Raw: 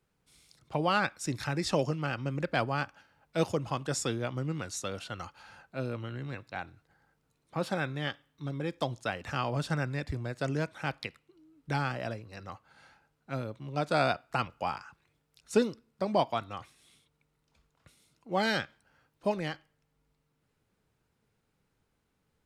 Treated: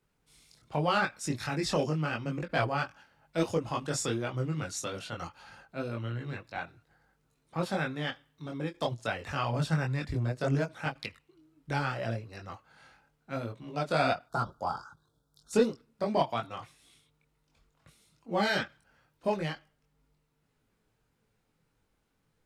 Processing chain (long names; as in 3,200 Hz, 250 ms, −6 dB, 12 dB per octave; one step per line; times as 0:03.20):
0:14.26–0:15.53: elliptic band-stop filter 1,500–3,500 Hz
multi-voice chorus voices 6, 0.79 Hz, delay 22 ms, depth 4.3 ms
in parallel at −5 dB: soft clipping −24 dBFS, distortion −16 dB
on the sum: every ending faded ahead of time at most 350 dB per second